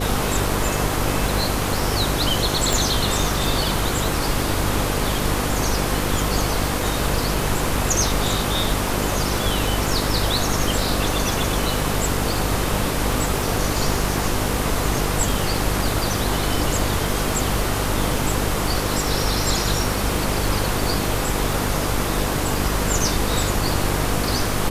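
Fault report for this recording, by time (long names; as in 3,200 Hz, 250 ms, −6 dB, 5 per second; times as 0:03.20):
mains buzz 50 Hz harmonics 10 −26 dBFS
surface crackle 44 per second −27 dBFS
0:02.73: click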